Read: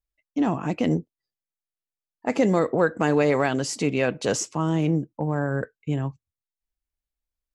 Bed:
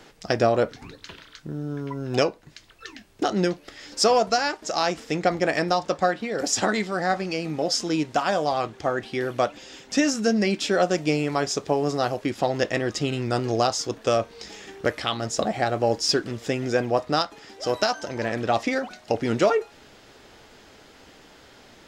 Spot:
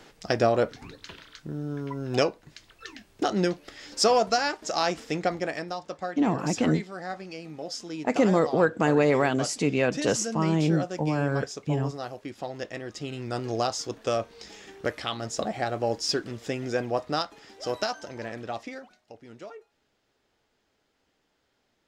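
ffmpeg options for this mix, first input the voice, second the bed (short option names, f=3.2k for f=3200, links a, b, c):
-filter_complex "[0:a]adelay=5800,volume=-1dB[a];[1:a]volume=4.5dB,afade=t=out:st=5.02:d=0.64:silence=0.334965,afade=t=in:st=12.89:d=0.69:silence=0.473151,afade=t=out:st=17.66:d=1.42:silence=0.125893[b];[a][b]amix=inputs=2:normalize=0"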